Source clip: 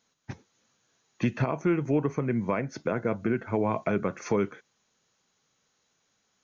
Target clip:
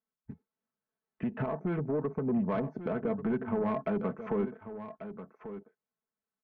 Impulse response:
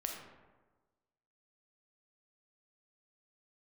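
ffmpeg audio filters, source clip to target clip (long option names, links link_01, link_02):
-af "afwtdn=0.0112,lowpass=1500,aecho=1:1:4.6:0.62,alimiter=limit=-20.5dB:level=0:latency=1:release=124,dynaudnorm=framelen=230:gausssize=13:maxgain=5dB,asoftclip=type=tanh:threshold=-19.5dB,aecho=1:1:1140:0.266,volume=-4dB"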